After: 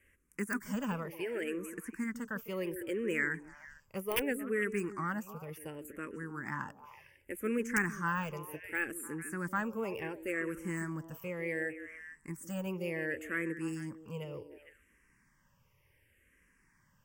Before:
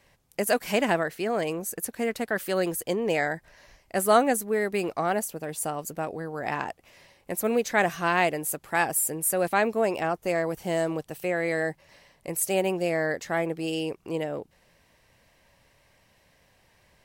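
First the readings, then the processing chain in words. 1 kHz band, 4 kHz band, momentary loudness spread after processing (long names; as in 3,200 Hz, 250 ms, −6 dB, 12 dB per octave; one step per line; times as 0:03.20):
−14.0 dB, −12.5 dB, 12 LU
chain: de-essing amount 75%
wrap-around overflow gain 11.5 dB
phaser with its sweep stopped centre 1,700 Hz, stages 4
echo through a band-pass that steps 151 ms, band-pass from 320 Hz, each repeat 1.4 octaves, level −7 dB
frequency shifter mixed with the dry sound −0.68 Hz
level −2 dB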